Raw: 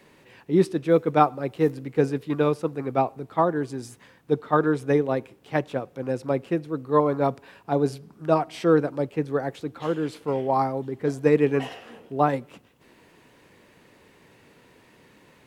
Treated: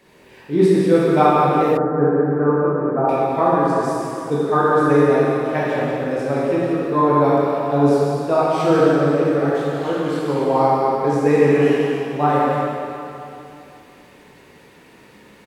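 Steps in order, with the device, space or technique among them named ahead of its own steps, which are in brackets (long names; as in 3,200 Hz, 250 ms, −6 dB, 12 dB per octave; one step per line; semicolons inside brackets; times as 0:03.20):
cave (single-tap delay 173 ms −8.5 dB; convolution reverb RT60 2.7 s, pre-delay 14 ms, DRR −8 dB)
0:01.77–0:03.09: elliptic low-pass filter 1,600 Hz, stop band 60 dB
level −1 dB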